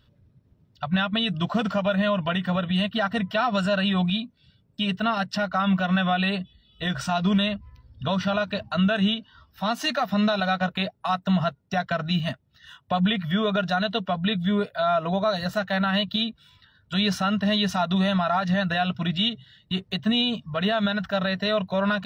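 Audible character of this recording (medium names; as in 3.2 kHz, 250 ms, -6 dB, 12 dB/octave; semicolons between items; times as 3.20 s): noise floor -63 dBFS; spectral tilt -4.0 dB/octave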